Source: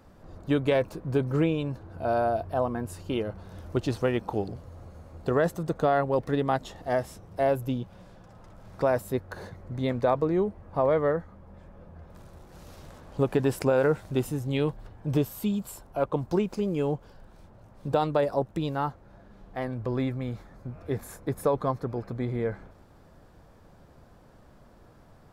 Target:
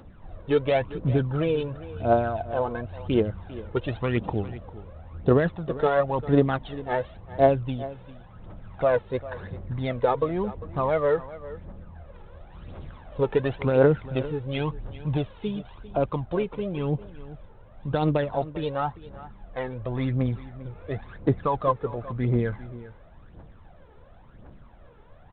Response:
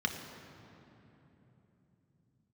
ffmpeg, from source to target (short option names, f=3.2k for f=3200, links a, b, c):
-filter_complex "[0:a]asplit=3[a][b][c];[a]afade=t=out:st=1.1:d=0.02[d];[b]equalizer=f=2.1k:w=3.8:g=-5.5,afade=t=in:st=1.1:d=0.02,afade=t=out:st=1.69:d=0.02[e];[c]afade=t=in:st=1.69:d=0.02[f];[d][e][f]amix=inputs=3:normalize=0,aphaser=in_gain=1:out_gain=1:delay=2.4:decay=0.65:speed=0.94:type=triangular,aecho=1:1:398:0.15" -ar 8000 -c:a adpcm_g726 -b:a 32k